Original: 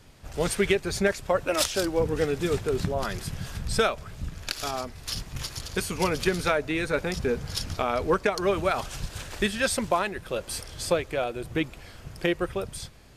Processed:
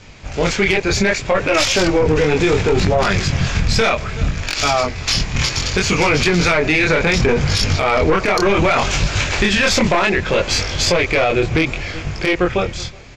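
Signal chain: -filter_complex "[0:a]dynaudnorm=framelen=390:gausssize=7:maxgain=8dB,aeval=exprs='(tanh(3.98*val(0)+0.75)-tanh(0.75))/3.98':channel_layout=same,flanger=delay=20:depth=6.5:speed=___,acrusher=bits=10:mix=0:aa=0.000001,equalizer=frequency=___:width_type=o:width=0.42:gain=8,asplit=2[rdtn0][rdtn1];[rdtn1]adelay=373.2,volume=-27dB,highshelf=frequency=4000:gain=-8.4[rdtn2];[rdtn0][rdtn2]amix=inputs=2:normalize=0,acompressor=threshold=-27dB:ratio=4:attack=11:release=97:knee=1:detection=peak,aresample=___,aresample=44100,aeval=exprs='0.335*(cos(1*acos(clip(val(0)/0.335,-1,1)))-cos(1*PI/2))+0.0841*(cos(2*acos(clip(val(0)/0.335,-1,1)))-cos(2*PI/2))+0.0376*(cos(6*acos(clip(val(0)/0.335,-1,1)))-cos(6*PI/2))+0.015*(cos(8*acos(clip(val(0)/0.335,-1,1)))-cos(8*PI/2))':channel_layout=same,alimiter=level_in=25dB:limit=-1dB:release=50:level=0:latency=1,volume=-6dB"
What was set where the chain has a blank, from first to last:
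0.66, 2300, 16000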